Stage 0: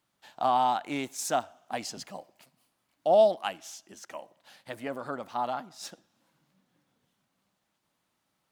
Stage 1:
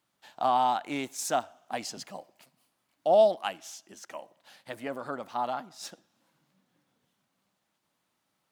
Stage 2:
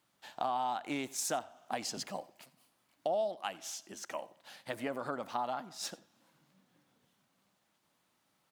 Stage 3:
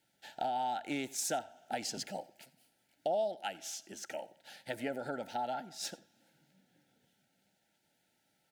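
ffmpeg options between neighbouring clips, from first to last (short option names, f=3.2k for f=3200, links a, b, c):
-af "lowshelf=f=73:g=-8"
-af "acompressor=threshold=-35dB:ratio=4,aecho=1:1:89:0.0794,volume=2dB"
-af "asuperstop=centerf=1100:order=20:qfactor=2.8"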